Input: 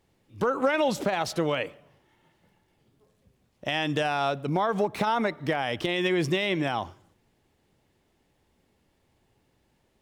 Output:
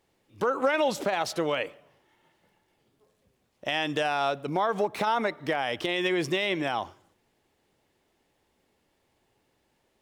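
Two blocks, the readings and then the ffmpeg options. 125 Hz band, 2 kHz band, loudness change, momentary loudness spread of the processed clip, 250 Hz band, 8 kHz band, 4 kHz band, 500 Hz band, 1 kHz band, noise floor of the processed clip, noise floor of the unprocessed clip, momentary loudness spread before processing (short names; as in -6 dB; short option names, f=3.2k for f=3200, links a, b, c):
-7.0 dB, 0.0 dB, -1.0 dB, 5 LU, -3.0 dB, 0.0 dB, 0.0 dB, -0.5 dB, 0.0 dB, -72 dBFS, -70 dBFS, 6 LU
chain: -af "bass=f=250:g=-8,treble=f=4k:g=0"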